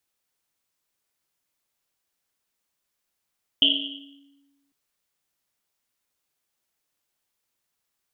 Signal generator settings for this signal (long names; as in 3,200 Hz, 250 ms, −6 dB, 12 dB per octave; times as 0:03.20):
drum after Risset, pitch 280 Hz, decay 1.44 s, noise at 3,100 Hz, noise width 500 Hz, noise 75%